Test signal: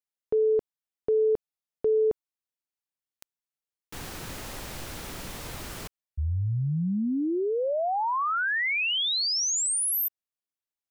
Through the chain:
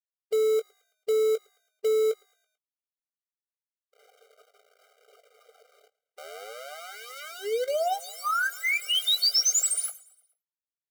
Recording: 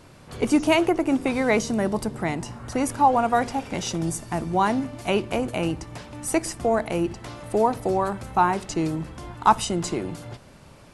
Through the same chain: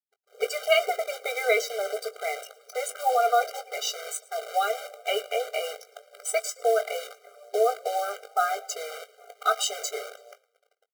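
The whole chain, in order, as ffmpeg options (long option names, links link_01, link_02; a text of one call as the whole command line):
ffmpeg -i in.wav -filter_complex "[0:a]lowpass=frequency=11000:width=0.5412,lowpass=frequency=11000:width=1.3066,acrossover=split=330|1400[link_01][link_02][link_03];[link_03]adynamicsmooth=sensitivity=7:basefreq=4600[link_04];[link_01][link_02][link_04]amix=inputs=3:normalize=0,equalizer=frequency=6900:width=0.46:gain=7,bandreject=frequency=530:width=12,afftfilt=real='re*gte(hypot(re,im),0.0355)':imag='im*gte(hypot(re,im),0.0355)':win_size=1024:overlap=0.75,acrusher=bits=6:dc=4:mix=0:aa=0.000001,asplit=2[link_05][link_06];[link_06]adelay=20,volume=-10.5dB[link_07];[link_05][link_07]amix=inputs=2:normalize=0,asplit=5[link_08][link_09][link_10][link_11][link_12];[link_09]adelay=110,afreqshift=-60,volume=-23dB[link_13];[link_10]adelay=220,afreqshift=-120,volume=-28.5dB[link_14];[link_11]adelay=330,afreqshift=-180,volume=-34dB[link_15];[link_12]adelay=440,afreqshift=-240,volume=-39.5dB[link_16];[link_08][link_13][link_14][link_15][link_16]amix=inputs=5:normalize=0,afftfilt=real='re*eq(mod(floor(b*sr/1024/400),2),1)':imag='im*eq(mod(floor(b*sr/1024/400),2),1)':win_size=1024:overlap=0.75" out.wav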